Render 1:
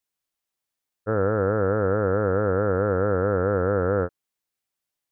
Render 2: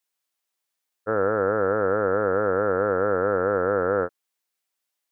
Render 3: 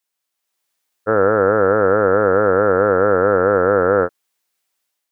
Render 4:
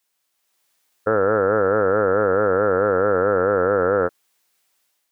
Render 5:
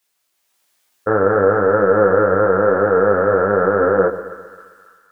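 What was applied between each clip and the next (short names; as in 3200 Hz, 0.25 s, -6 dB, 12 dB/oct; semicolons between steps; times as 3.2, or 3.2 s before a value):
HPF 480 Hz 6 dB/oct; gain +3.5 dB
AGC gain up to 6.5 dB; gain +2 dB
limiter -14 dBFS, peak gain reduction 11 dB; gain +6 dB
chorus voices 6, 1 Hz, delay 18 ms, depth 3 ms; split-band echo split 1200 Hz, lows 0.132 s, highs 0.281 s, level -13.5 dB; gain +6.5 dB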